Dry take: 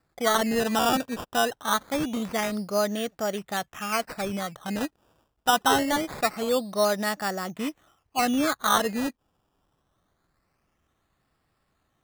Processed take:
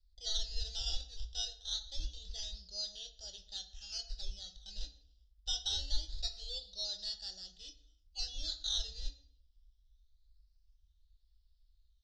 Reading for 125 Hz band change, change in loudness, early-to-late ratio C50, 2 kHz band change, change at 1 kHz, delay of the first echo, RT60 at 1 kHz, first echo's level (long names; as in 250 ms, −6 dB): can't be measured, −13.5 dB, 13.0 dB, −30.5 dB, −36.5 dB, no echo audible, 0.60 s, no echo audible